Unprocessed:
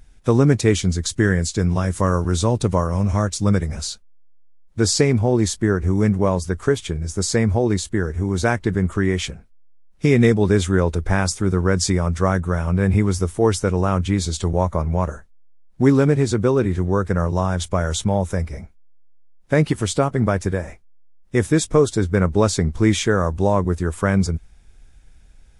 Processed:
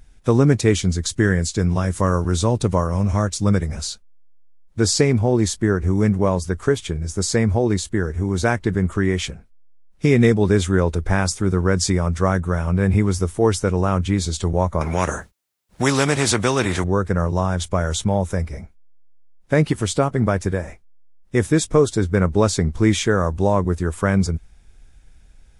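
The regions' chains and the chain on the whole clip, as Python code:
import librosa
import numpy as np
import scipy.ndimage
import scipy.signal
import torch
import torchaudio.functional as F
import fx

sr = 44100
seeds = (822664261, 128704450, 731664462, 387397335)

y = fx.chain(x, sr, fx.highpass(hz=60.0, slope=12),
    fx.spectral_comp(ratio=2.0), at=(14.81, 16.84))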